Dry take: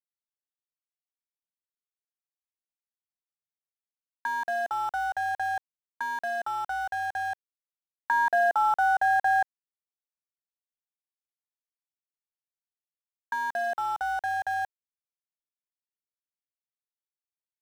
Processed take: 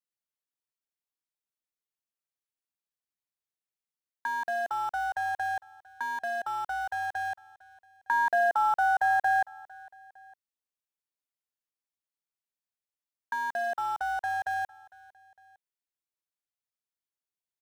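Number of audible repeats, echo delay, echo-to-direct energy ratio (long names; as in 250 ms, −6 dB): 2, 455 ms, −22.0 dB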